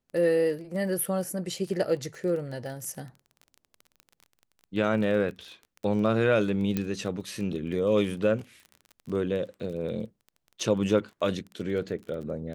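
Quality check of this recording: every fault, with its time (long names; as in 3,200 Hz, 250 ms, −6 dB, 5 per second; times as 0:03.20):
surface crackle 23 per second −36 dBFS
0:06.77: click −14 dBFS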